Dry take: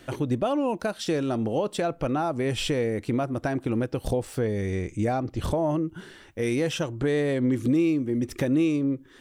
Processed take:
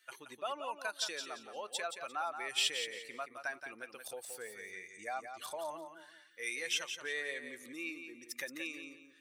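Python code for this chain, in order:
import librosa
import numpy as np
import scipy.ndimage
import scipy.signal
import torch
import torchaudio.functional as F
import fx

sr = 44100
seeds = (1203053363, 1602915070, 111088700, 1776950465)

y = fx.bin_expand(x, sr, power=1.5)
y = scipy.signal.sosfilt(scipy.signal.butter(2, 1400.0, 'highpass', fs=sr, output='sos'), y)
y = fx.echo_feedback(y, sr, ms=174, feedback_pct=27, wet_db=-8.0)
y = y * 10.0 ** (1.0 / 20.0)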